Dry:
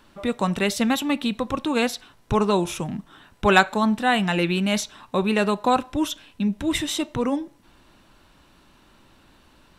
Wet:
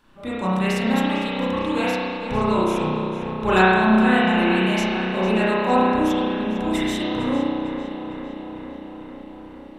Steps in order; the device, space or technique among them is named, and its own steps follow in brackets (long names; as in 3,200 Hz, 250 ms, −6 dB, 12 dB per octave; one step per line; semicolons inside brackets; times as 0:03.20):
dub delay into a spring reverb (feedback echo with a low-pass in the loop 453 ms, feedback 73%, low-pass 4,100 Hz, level −9 dB; spring reverb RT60 1.7 s, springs 32 ms, chirp 75 ms, DRR −8.5 dB)
level −7.5 dB